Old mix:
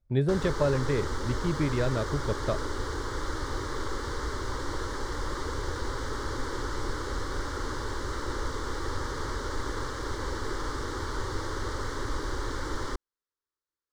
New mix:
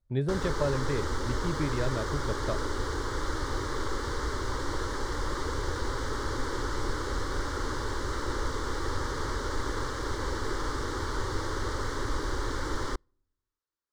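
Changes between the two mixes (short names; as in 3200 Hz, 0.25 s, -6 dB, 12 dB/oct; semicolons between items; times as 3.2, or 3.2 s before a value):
speech -7.0 dB; reverb: on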